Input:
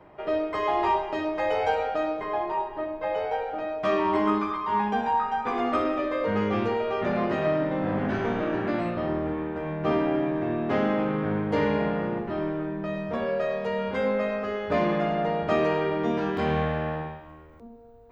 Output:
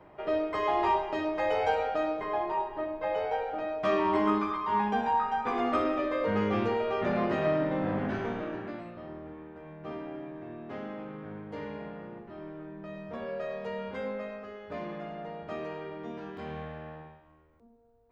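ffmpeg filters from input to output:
ffmpeg -i in.wav -af "volume=5dB,afade=type=out:start_time=7.77:duration=1.08:silence=0.237137,afade=type=in:start_time=12.32:duration=1.36:silence=0.421697,afade=type=out:start_time=13.68:duration=0.86:silence=0.473151" out.wav

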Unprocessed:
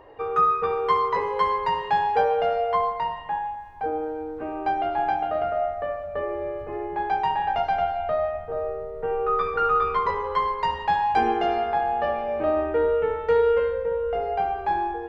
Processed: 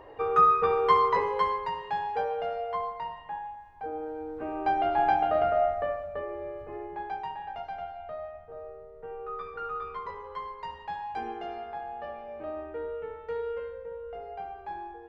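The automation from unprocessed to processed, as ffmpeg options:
ffmpeg -i in.wav -af "volume=9.5dB,afade=type=out:start_time=1.05:duration=0.67:silence=0.354813,afade=type=in:start_time=3.87:duration=1.25:silence=0.334965,afade=type=out:start_time=5.68:duration=0.56:silence=0.398107,afade=type=out:start_time=6.76:duration=0.62:silence=0.473151" out.wav

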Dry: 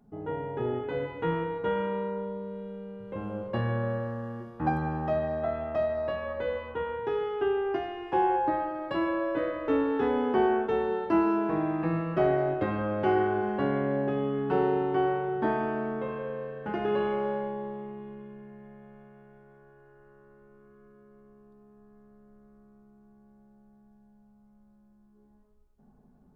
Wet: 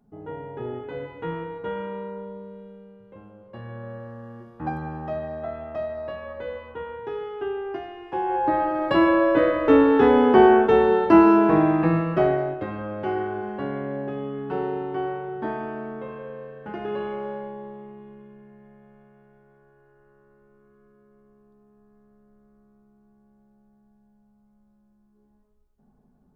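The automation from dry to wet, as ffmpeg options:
ffmpeg -i in.wav -af "volume=22.5dB,afade=type=out:start_time=2.39:duration=0.98:silence=0.251189,afade=type=in:start_time=3.37:duration=1.18:silence=0.251189,afade=type=in:start_time=8.25:duration=0.59:silence=0.237137,afade=type=out:start_time=11.56:duration=1.02:silence=0.237137" out.wav

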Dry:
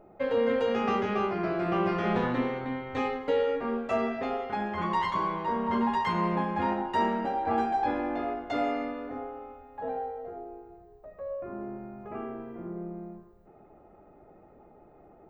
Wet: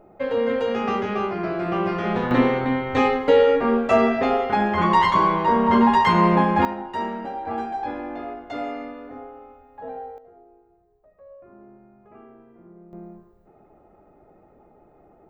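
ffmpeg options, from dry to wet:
ffmpeg -i in.wav -af "asetnsamples=nb_out_samples=441:pad=0,asendcmd='2.31 volume volume 11dB;6.65 volume volume -1dB;10.18 volume volume -10dB;12.93 volume volume 1dB',volume=3.5dB" out.wav

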